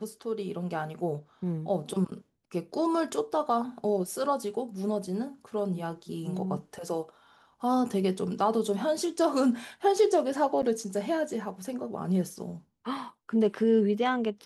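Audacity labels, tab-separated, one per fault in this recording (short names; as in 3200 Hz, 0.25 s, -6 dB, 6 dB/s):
10.620000	10.630000	gap 9.1 ms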